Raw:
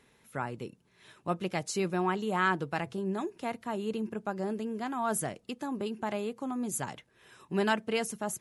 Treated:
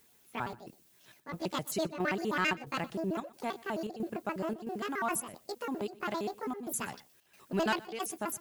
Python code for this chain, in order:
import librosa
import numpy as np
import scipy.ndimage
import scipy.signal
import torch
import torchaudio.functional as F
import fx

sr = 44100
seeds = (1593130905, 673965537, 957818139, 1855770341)

y = fx.pitch_trill(x, sr, semitones=8.5, every_ms=66)
y = fx.leveller(y, sr, passes=1)
y = fx.dmg_noise_colour(y, sr, seeds[0], colour='blue', level_db=-61.0)
y = fx.chopper(y, sr, hz=1.5, depth_pct=65, duty_pct=80)
y = y + 10.0 ** (-22.0 / 20.0) * np.pad(y, (int(122 * sr / 1000.0), 0))[:len(y)]
y = y * librosa.db_to_amplitude(-4.5)